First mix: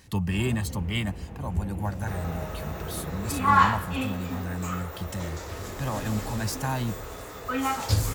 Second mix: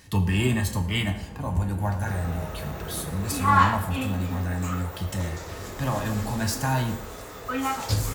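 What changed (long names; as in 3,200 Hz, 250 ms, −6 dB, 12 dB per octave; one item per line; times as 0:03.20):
speech: send on
master: add parametric band 81 Hz −6.5 dB 0.23 octaves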